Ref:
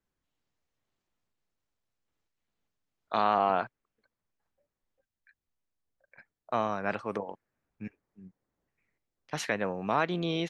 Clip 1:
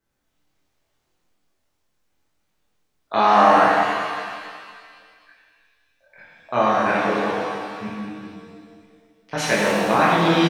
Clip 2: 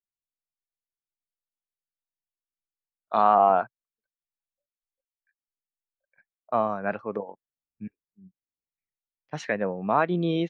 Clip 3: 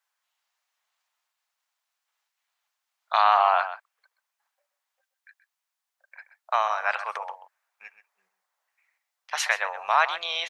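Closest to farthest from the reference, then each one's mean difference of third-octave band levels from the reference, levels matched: 2, 1, 3; 6.0, 8.0, 11.0 dB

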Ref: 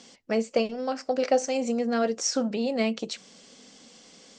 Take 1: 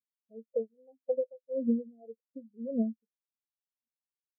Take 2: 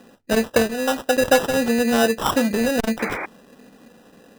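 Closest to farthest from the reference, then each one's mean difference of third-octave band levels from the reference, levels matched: 2, 1; 9.5, 15.5 dB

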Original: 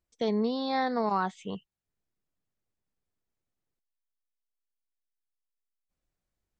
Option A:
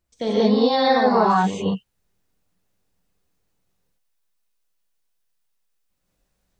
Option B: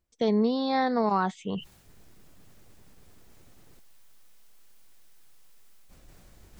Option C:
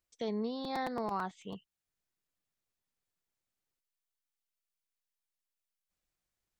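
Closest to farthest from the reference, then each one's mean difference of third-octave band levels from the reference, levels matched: B, C, A; 1.0, 3.0, 7.5 dB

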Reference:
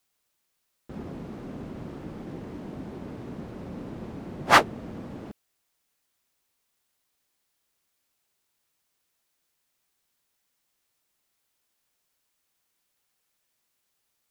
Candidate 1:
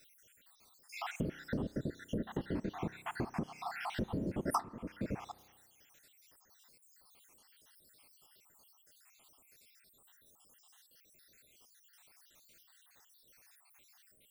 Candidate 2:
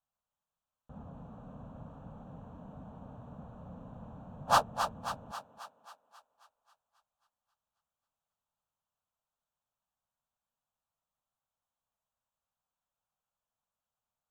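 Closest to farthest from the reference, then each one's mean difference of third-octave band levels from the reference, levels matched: 2, 1; 7.0, 11.0 dB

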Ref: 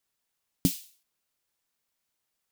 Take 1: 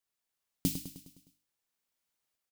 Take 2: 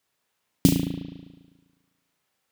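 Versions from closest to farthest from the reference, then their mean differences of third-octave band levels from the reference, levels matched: 1, 2; 10.5, 15.5 dB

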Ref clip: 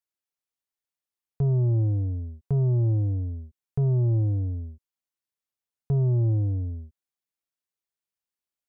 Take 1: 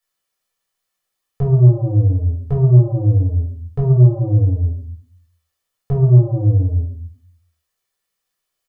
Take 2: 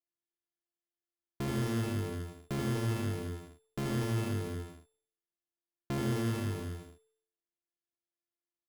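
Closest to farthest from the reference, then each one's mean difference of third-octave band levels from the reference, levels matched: 1, 2; 3.0, 21.5 dB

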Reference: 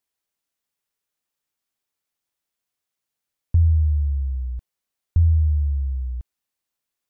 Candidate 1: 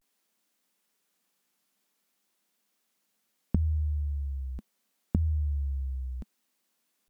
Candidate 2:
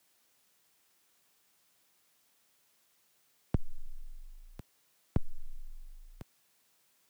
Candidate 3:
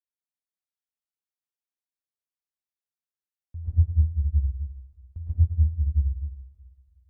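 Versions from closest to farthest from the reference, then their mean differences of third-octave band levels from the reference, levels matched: 1, 3, 2; 3.0, 4.5, 9.0 dB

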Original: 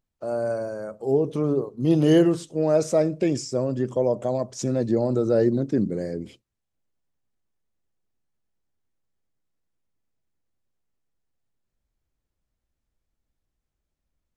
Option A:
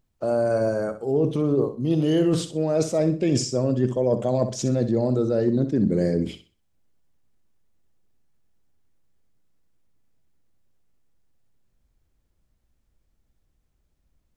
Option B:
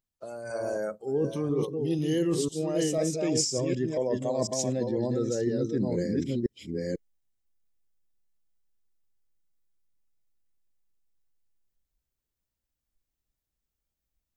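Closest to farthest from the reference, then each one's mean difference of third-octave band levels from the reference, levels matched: A, B; 3.5, 6.0 dB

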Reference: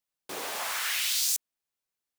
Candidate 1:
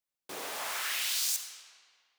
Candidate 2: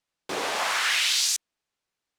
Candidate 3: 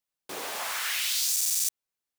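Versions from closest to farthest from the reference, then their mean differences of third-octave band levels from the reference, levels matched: 3, 1, 2; 1.0, 2.5, 4.0 dB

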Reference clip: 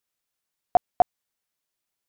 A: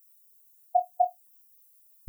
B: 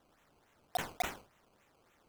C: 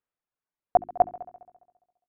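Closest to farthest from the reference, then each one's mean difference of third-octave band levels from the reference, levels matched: C, A, B; 2.5, 13.0, 18.5 dB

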